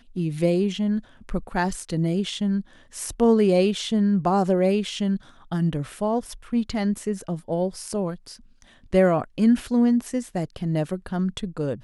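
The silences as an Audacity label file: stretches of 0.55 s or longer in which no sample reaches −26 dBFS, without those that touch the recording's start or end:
8.130000	8.930000	silence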